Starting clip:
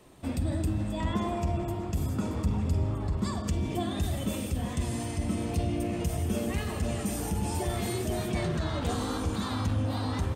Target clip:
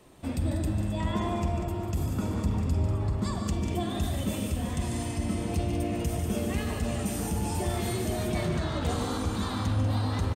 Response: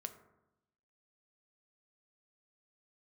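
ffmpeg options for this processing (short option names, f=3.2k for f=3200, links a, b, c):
-af "aecho=1:1:145.8|192.4:0.355|0.316"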